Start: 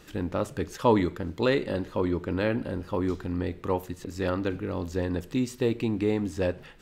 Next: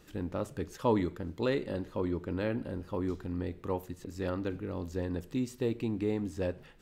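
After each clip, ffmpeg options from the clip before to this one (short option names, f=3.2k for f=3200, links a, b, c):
-af "equalizer=f=2.4k:w=0.3:g=-3.5,volume=-5dB"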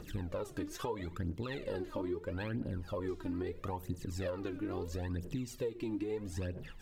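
-af "alimiter=level_in=3dB:limit=-24dB:level=0:latency=1:release=294,volume=-3dB,aphaser=in_gain=1:out_gain=1:delay=3.5:decay=0.73:speed=0.76:type=triangular,acompressor=threshold=-36dB:ratio=6,volume=2dB"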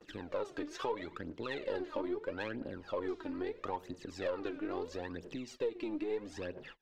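-filter_complex "[0:a]acrossover=split=280 5800:gain=0.112 1 0.0794[a][b][c];[a][b][c]amix=inputs=3:normalize=0,aeval=exprs='0.0501*(cos(1*acos(clip(val(0)/0.0501,-1,1)))-cos(1*PI/2))+0.00141*(cos(8*acos(clip(val(0)/0.0501,-1,1)))-cos(8*PI/2))':c=same,agate=range=-29dB:threshold=-55dB:ratio=16:detection=peak,volume=3dB"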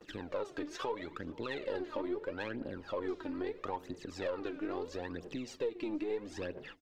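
-filter_complex "[0:a]asplit=2[a][b];[b]alimiter=level_in=8.5dB:limit=-24dB:level=0:latency=1:release=413,volume=-8.5dB,volume=2dB[c];[a][c]amix=inputs=2:normalize=0,asplit=2[d][e];[e]adelay=478.1,volume=-21dB,highshelf=f=4k:g=-10.8[f];[d][f]amix=inputs=2:normalize=0,volume=-4.5dB"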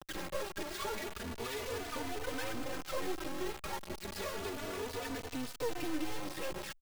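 -filter_complex "[0:a]aresample=11025,asoftclip=type=tanh:threshold=-37.5dB,aresample=44100,acrusher=bits=5:dc=4:mix=0:aa=0.000001,asplit=2[a][b];[b]adelay=3.3,afreqshift=0.31[c];[a][c]amix=inputs=2:normalize=1,volume=11.5dB"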